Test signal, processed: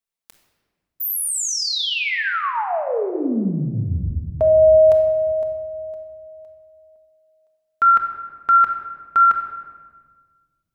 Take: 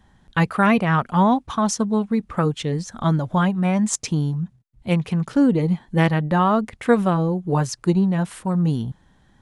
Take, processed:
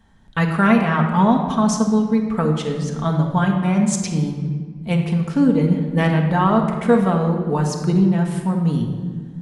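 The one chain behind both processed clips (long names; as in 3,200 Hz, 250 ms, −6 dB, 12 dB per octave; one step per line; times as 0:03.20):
rectangular room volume 1,800 cubic metres, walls mixed, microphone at 1.6 metres
level −1.5 dB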